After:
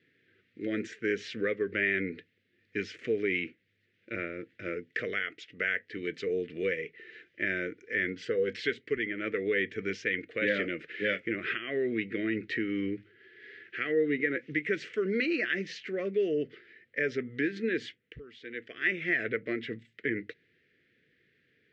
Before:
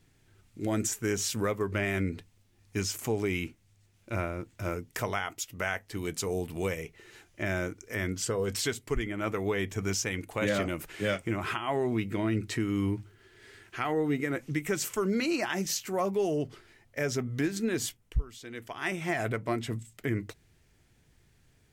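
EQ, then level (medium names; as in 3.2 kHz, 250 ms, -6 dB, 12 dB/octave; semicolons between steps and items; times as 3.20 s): Butterworth band-stop 920 Hz, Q 0.63; cabinet simulation 250–3500 Hz, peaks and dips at 480 Hz +8 dB, 1.1 kHz +7 dB, 2 kHz +4 dB; peaking EQ 1.7 kHz +8.5 dB 0.59 oct; 0.0 dB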